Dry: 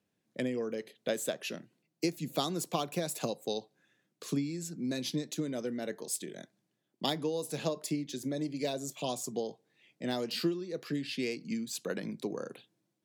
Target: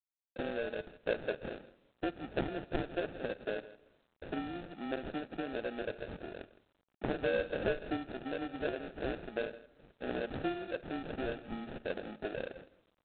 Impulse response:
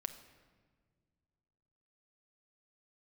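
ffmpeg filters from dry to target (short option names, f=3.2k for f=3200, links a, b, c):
-filter_complex "[0:a]highpass=390,acrossover=split=3100[a][b];[b]acompressor=threshold=-46dB:ratio=4:attack=1:release=60[c];[a][c]amix=inputs=2:normalize=0,asplit=3[d][e][f];[d]afade=t=out:st=3.22:d=0.02[g];[e]equalizer=f=1.2k:w=3.2:g=-9.5,afade=t=in:st=3.22:d=0.02,afade=t=out:st=4.29:d=0.02[h];[f]afade=t=in:st=4.29:d=0.02[i];[g][h][i]amix=inputs=3:normalize=0,asplit=2[j][k];[k]acompressor=threshold=-44dB:ratio=10,volume=-1dB[l];[j][l]amix=inputs=2:normalize=0,asettb=1/sr,asplit=3[m][n][o];[m]atrim=end=7.144[p];[n]atrim=start=7.14:end=7.97,asetpts=PTS-STARTPTS,afade=t=in:d=0.004:c=qsin,afade=t=out:st=0.826:d=0.004:c=qsin,asplit=2[q][r];[r]highpass=f=720:p=1,volume=17dB,asoftclip=type=tanh:threshold=-20.5dB[s];[q][s]amix=inputs=2:normalize=0,lowpass=f=1.5k:p=1,volume=-6dB[t];[o]atrim=start=7.966[u];[p][t]acrossfade=d=0.004:c1=hsin:c2=qsin[v];[v][u]acrossfade=d=0.004:c1=qsin:c2=hsin,acrusher=samples=42:mix=1:aa=0.000001,aecho=1:1:162:0.126,asplit=2[w][x];[1:a]atrim=start_sample=2205,lowpass=6.3k,highshelf=f=3.6k:g=-8.5[y];[x][y]afir=irnorm=-1:irlink=0,volume=-8.5dB[z];[w][z]amix=inputs=2:normalize=0,volume=-3.5dB" -ar 8000 -c:a adpcm_g726 -b:a 24k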